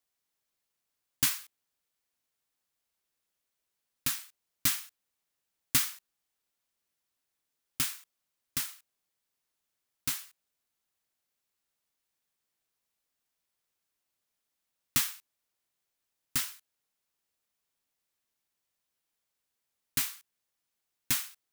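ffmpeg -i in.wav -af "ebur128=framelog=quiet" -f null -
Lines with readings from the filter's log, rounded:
Integrated loudness:
  I:         -31.5 LUFS
  Threshold: -42.4 LUFS
Loudness range:
  LRA:         9.5 LU
  Threshold: -57.3 LUFS
  LRA low:   -42.9 LUFS
  LRA high:  -33.4 LUFS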